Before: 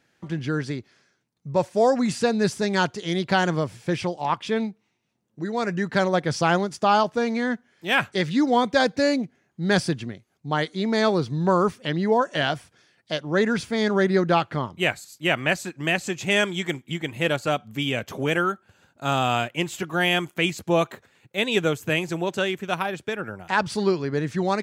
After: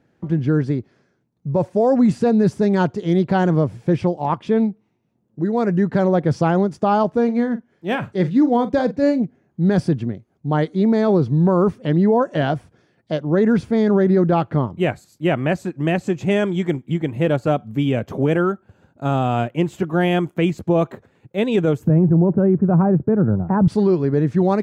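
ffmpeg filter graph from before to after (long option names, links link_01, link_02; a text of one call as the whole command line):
ffmpeg -i in.wav -filter_complex "[0:a]asettb=1/sr,asplit=3[link_01][link_02][link_03];[link_01]atrim=end=7.244[link_04];[link_02]atrim=start=7.24:end=9.22,asetpts=PTS-STARTPTS,afade=type=in:duration=0.004:curve=qsin,afade=type=out:start_time=1.976:duration=0.004:curve=qsin,tremolo=f=6:d=0.52,asplit=2[link_05][link_06];[link_06]adelay=43,volume=-13.5dB[link_07];[link_05][link_07]amix=inputs=2:normalize=0,atrim=end_sample=87318[link_08];[link_03]atrim=start=9.216[link_09];[link_04][link_08]acrossfade=duration=0.004:curve1=hsin:curve2=qsin[link_10];[link_10][link_09]acrossfade=duration=0.004:curve1=qsin:curve2=hsin,asettb=1/sr,asplit=3[link_11][link_12][link_13];[link_11]atrim=end=21.874[link_14];[link_12]atrim=start=21.87:end=23.68,asetpts=PTS-STARTPTS,afade=type=in:duration=0.004:curve=qsin,afade=type=out:start_time=1.806:duration=0.004:curve=qsin,lowpass=frequency=1400:width=0.5412,lowpass=frequency=1400:width=1.3066,equalizer=frequency=140:width=0.52:gain=14[link_15];[link_13]atrim=start=23.676[link_16];[link_14][link_15]acrossfade=duration=0.004:curve1=hsin:curve2=qsin[link_17];[link_17][link_16]acrossfade=duration=0.004:curve1=qsin:curve2=hsin,tiltshelf=frequency=1200:gain=10,alimiter=limit=-8.5dB:level=0:latency=1:release=16" out.wav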